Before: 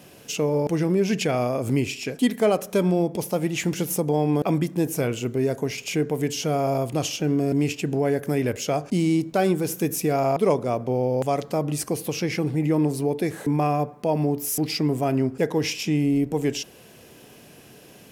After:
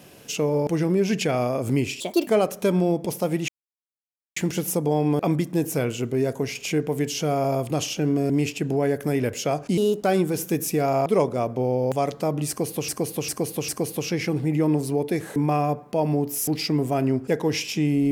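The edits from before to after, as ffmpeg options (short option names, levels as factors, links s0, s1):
-filter_complex "[0:a]asplit=9[s0][s1][s2][s3][s4][s5][s6][s7][s8];[s0]atrim=end=2.004[s9];[s1]atrim=start=2:end=2.38,asetpts=PTS-STARTPTS,asetrate=61299,aresample=44100,atrim=end_sample=12056,asetpts=PTS-STARTPTS[s10];[s2]atrim=start=2.376:end=3.59,asetpts=PTS-STARTPTS,afade=t=out:st=1.21:d=0.004:c=hsin,apad=pad_dur=0.88[s11];[s3]atrim=start=3.59:end=9.004,asetpts=PTS-STARTPTS,afade=t=in:d=0.004:c=hsin[s12];[s4]atrim=start=9:end=9.35,asetpts=PTS-STARTPTS,asetrate=56889,aresample=44100,atrim=end_sample=11965,asetpts=PTS-STARTPTS[s13];[s5]atrim=start=9.346:end=12.192[s14];[s6]atrim=start=11.788:end=12.192[s15];[s7]atrim=start=11.788:end=12.192[s16];[s8]atrim=start=11.788[s17];[s9][s10]acrossfade=d=0.004:c1=hsin:c2=hsin[s18];[s11][s12]concat=n=2:v=0:a=1[s19];[s18][s19]acrossfade=d=0.004:c1=hsin:c2=hsin[s20];[s20][s13]acrossfade=d=0.004:c1=hsin:c2=hsin[s21];[s21][s14]acrossfade=d=0.004:c1=hsin:c2=hsin[s22];[s22][s15]acrossfade=d=0.004:c1=hsin:c2=hsin[s23];[s23][s16]acrossfade=d=0.004:c1=hsin:c2=hsin[s24];[s24][s17]acrossfade=d=0.004:c1=hsin:c2=hsin"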